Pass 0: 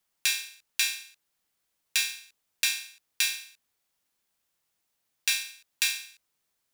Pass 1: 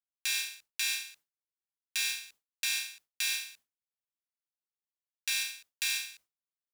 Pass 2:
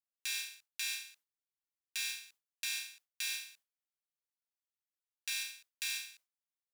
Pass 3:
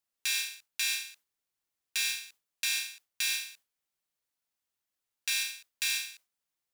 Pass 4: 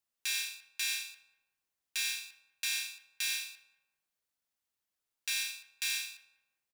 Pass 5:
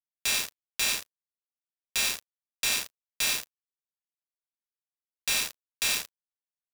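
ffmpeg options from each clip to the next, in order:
ffmpeg -i in.wav -af "agate=range=-33dB:threshold=-55dB:ratio=3:detection=peak,areverse,acompressor=threshold=-33dB:ratio=10,areverse,volume=4.5dB" out.wav
ffmpeg -i in.wav -af "lowshelf=frequency=410:gain=-10,volume=-6dB" out.wav
ffmpeg -i in.wav -af "asoftclip=type=tanh:threshold=-22.5dB,volume=7.5dB" out.wav
ffmpeg -i in.wav -filter_complex "[0:a]asplit=2[link_01][link_02];[link_02]alimiter=level_in=1dB:limit=-24dB:level=0:latency=1,volume=-1dB,volume=-2dB[link_03];[link_01][link_03]amix=inputs=2:normalize=0,asplit=2[link_04][link_05];[link_05]adelay=194,lowpass=frequency=1100:poles=1,volume=-13dB,asplit=2[link_06][link_07];[link_07]adelay=194,lowpass=frequency=1100:poles=1,volume=0.41,asplit=2[link_08][link_09];[link_09]adelay=194,lowpass=frequency=1100:poles=1,volume=0.41,asplit=2[link_10][link_11];[link_11]adelay=194,lowpass=frequency=1100:poles=1,volume=0.41[link_12];[link_04][link_06][link_08][link_10][link_12]amix=inputs=5:normalize=0,volume=-6.5dB" out.wav
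ffmpeg -i in.wav -af "acrusher=bits=4:mix=0:aa=0.5,volume=7dB" out.wav

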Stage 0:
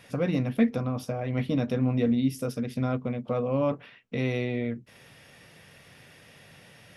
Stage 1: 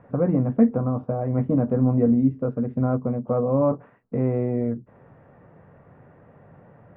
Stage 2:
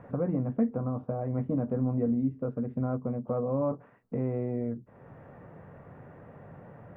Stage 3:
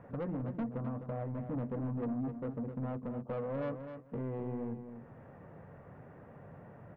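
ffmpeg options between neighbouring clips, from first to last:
ffmpeg -i in.wav -af "lowpass=frequency=1200:width=0.5412,lowpass=frequency=1200:width=1.3066,volume=5.5dB" out.wav
ffmpeg -i in.wav -af "acompressor=threshold=-48dB:ratio=1.5,volume=2.5dB" out.wav
ffmpeg -i in.wav -af "asoftclip=type=tanh:threshold=-28.5dB,aecho=1:1:257|514:0.355|0.0568,volume=-4dB" out.wav

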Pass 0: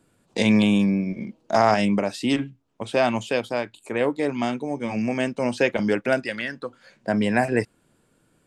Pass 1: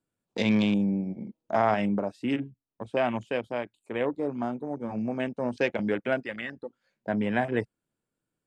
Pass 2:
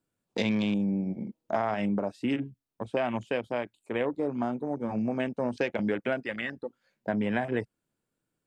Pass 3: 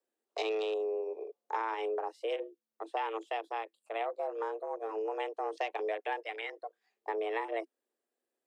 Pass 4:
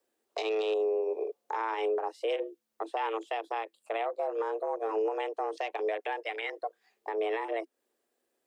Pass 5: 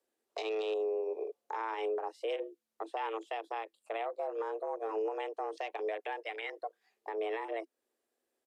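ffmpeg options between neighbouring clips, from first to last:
ffmpeg -i in.wav -af "afwtdn=0.0251,volume=-5.5dB" out.wav
ffmpeg -i in.wav -af "acompressor=threshold=-26dB:ratio=6,volume=2dB" out.wav
ffmpeg -i in.wav -af "afreqshift=220,volume=-6dB" out.wav
ffmpeg -i in.wav -af "alimiter=level_in=7.5dB:limit=-24dB:level=0:latency=1:release=236,volume=-7.5dB,volume=8.5dB" out.wav
ffmpeg -i in.wav -af "aresample=32000,aresample=44100,volume=-4.5dB" out.wav

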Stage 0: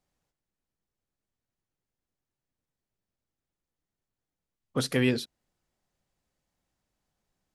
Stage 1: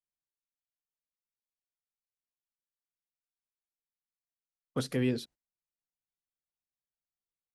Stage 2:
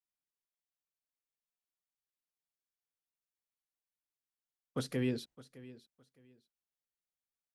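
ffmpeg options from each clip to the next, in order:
ffmpeg -i in.wav -filter_complex "[0:a]agate=range=-23dB:threshold=-47dB:ratio=16:detection=peak,acrossover=split=580[link_01][link_02];[link_02]alimiter=level_in=2dB:limit=-24dB:level=0:latency=1:release=252,volume=-2dB[link_03];[link_01][link_03]amix=inputs=2:normalize=0,volume=-3.5dB" out.wav
ffmpeg -i in.wav -af "aecho=1:1:612|1224:0.119|0.0273,volume=-4dB" out.wav

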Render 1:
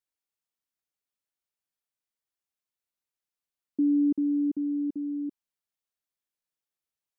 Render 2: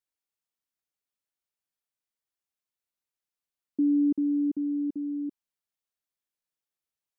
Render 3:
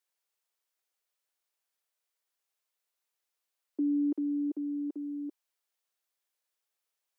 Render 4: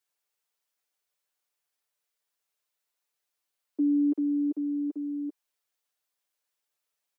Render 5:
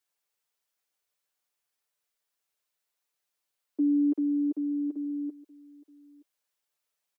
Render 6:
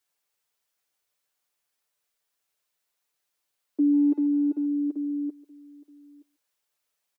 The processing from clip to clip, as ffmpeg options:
ffmpeg -i in.wav -af anull out.wav
ffmpeg -i in.wav -af "highpass=frequency=390:width=0.5412,highpass=frequency=390:width=1.3066,volume=5.5dB" out.wav
ffmpeg -i in.wav -af "aecho=1:1:6.8:0.65" out.wav
ffmpeg -i in.wav -af "aecho=1:1:923:0.075" out.wav
ffmpeg -i in.wav -filter_complex "[0:a]asplit=2[link_01][link_02];[link_02]adelay=140,highpass=300,lowpass=3400,asoftclip=type=hard:threshold=-29dB,volume=-21dB[link_03];[link_01][link_03]amix=inputs=2:normalize=0,volume=3.5dB" out.wav

